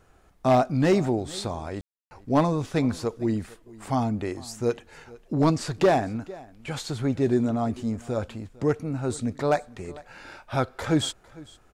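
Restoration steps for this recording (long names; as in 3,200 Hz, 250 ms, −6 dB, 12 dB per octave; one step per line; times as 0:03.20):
clipped peaks rebuilt −13.5 dBFS
ambience match 0:01.81–0:02.11
echo removal 453 ms −21.5 dB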